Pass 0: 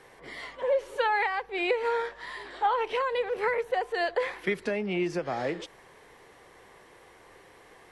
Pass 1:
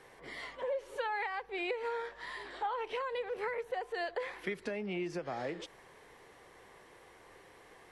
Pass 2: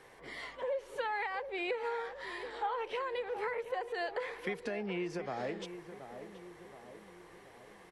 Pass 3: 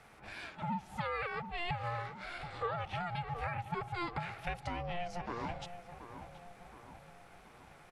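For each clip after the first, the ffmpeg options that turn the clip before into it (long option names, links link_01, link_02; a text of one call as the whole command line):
ffmpeg -i in.wav -af "acompressor=threshold=-34dB:ratio=2,volume=-3.5dB" out.wav
ffmpeg -i in.wav -filter_complex "[0:a]asplit=2[link_01][link_02];[link_02]adelay=726,lowpass=frequency=1400:poles=1,volume=-10dB,asplit=2[link_03][link_04];[link_04]adelay=726,lowpass=frequency=1400:poles=1,volume=0.55,asplit=2[link_05][link_06];[link_06]adelay=726,lowpass=frequency=1400:poles=1,volume=0.55,asplit=2[link_07][link_08];[link_08]adelay=726,lowpass=frequency=1400:poles=1,volume=0.55,asplit=2[link_09][link_10];[link_10]adelay=726,lowpass=frequency=1400:poles=1,volume=0.55,asplit=2[link_11][link_12];[link_12]adelay=726,lowpass=frequency=1400:poles=1,volume=0.55[link_13];[link_01][link_03][link_05][link_07][link_09][link_11][link_13]amix=inputs=7:normalize=0" out.wav
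ffmpeg -i in.wav -af "aeval=exprs='val(0)*sin(2*PI*350*n/s)':channel_layout=same,volume=1.5dB" out.wav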